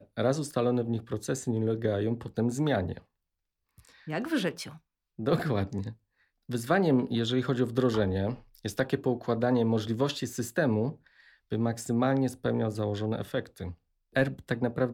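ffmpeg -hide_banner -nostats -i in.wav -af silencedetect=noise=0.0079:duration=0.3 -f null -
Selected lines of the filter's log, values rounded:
silence_start: 2.98
silence_end: 3.78 | silence_duration: 0.80
silence_start: 4.76
silence_end: 5.19 | silence_duration: 0.43
silence_start: 5.93
silence_end: 6.49 | silence_duration: 0.57
silence_start: 10.94
silence_end: 11.52 | silence_duration: 0.57
silence_start: 13.73
silence_end: 14.15 | silence_duration: 0.42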